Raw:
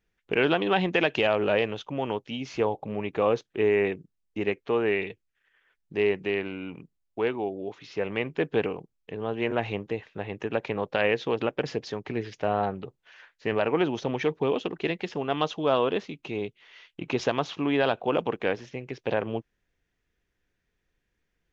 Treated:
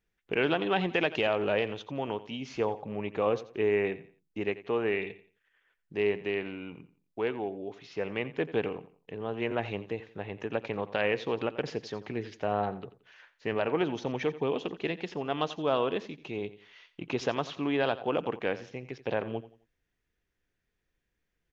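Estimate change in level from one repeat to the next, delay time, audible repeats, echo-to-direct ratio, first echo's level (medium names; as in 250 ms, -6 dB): -10.0 dB, 87 ms, 2, -15.5 dB, -16.0 dB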